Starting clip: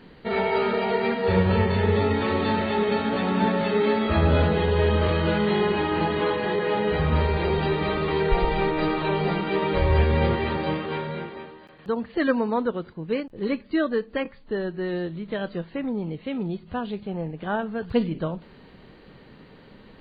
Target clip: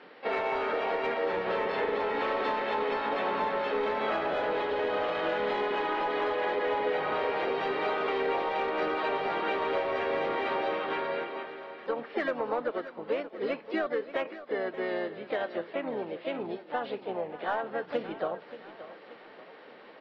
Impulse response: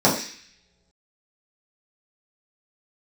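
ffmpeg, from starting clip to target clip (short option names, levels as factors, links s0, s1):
-filter_complex "[0:a]highpass=480,lowpass=3700,bandreject=f=970:w=12,acrossover=split=940[s0][s1];[s0]acontrast=32[s2];[s2][s1]amix=inputs=2:normalize=0,asplit=2[s3][s4];[s4]highpass=f=720:p=1,volume=4.47,asoftclip=type=tanh:threshold=0.355[s5];[s3][s5]amix=inputs=2:normalize=0,lowpass=f=2800:p=1,volume=0.501,acompressor=threshold=0.0794:ratio=10,asplit=2[s6][s7];[s7]aecho=0:1:580|1160|1740|2320:0.188|0.0885|0.0416|0.0196[s8];[s6][s8]amix=inputs=2:normalize=0,asplit=3[s9][s10][s11];[s10]asetrate=29433,aresample=44100,atempo=1.49831,volume=0.2[s12];[s11]asetrate=52444,aresample=44100,atempo=0.840896,volume=0.447[s13];[s9][s12][s13]amix=inputs=3:normalize=0,volume=0.531"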